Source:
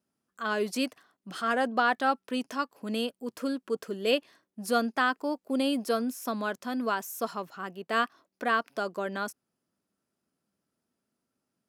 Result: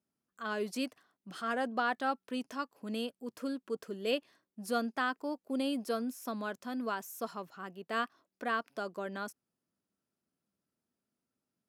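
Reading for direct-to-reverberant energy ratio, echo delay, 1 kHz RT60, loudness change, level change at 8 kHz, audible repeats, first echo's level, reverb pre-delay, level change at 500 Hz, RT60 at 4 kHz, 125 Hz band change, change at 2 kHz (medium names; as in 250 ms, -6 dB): no reverb, no echo, no reverb, -6.5 dB, -7.0 dB, no echo, no echo, no reverb, -6.5 dB, no reverb, no reading, -7.0 dB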